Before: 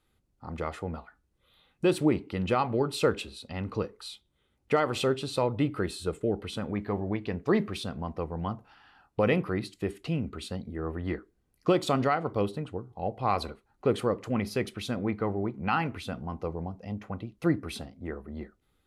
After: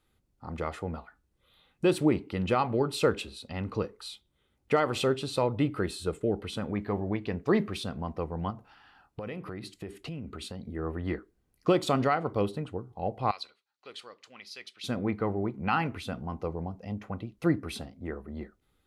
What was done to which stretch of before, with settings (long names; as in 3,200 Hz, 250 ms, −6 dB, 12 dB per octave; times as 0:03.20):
0:08.50–0:10.63: downward compressor, threshold −35 dBFS
0:13.31–0:14.84: resonant band-pass 4,200 Hz, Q 1.6